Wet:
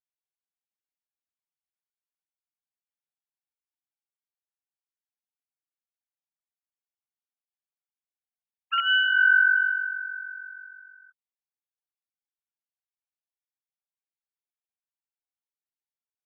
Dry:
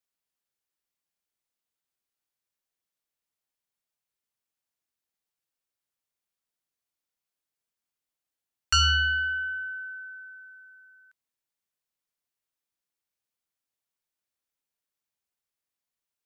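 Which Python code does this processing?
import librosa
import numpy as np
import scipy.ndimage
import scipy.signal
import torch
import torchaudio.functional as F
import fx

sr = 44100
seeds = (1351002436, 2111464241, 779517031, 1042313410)

y = fx.sine_speech(x, sr)
y = y * librosa.db_to_amplitude(4.5)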